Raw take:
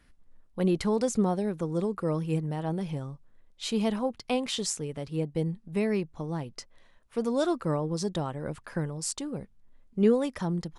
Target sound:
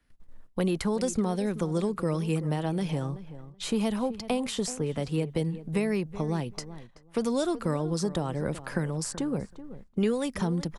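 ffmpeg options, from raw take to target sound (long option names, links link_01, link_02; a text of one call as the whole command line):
ffmpeg -i in.wav -filter_complex "[0:a]agate=range=-17dB:threshold=-54dB:ratio=16:detection=peak,acrossover=split=150|740|1800|7500[link_01][link_02][link_03][link_04][link_05];[link_01]acompressor=threshold=-46dB:ratio=4[link_06];[link_02]acompressor=threshold=-37dB:ratio=4[link_07];[link_03]acompressor=threshold=-50dB:ratio=4[link_08];[link_04]acompressor=threshold=-50dB:ratio=4[link_09];[link_05]acompressor=threshold=-49dB:ratio=4[link_10];[link_06][link_07][link_08][link_09][link_10]amix=inputs=5:normalize=0,asplit=2[link_11][link_12];[link_12]adelay=379,lowpass=frequency=1800:poles=1,volume=-14dB,asplit=2[link_13][link_14];[link_14]adelay=379,lowpass=frequency=1800:poles=1,volume=0.16[link_15];[link_11][link_13][link_15]amix=inputs=3:normalize=0,volume=8.5dB" out.wav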